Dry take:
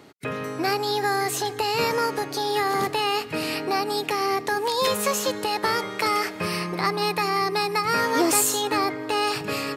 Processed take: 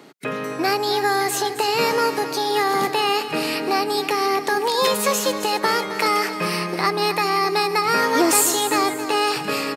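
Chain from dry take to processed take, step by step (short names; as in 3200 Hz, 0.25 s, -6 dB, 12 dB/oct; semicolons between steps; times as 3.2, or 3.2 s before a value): HPF 150 Hz 24 dB/oct; on a send: feedback echo 0.266 s, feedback 42%, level -12 dB; on the sum: gain +3.5 dB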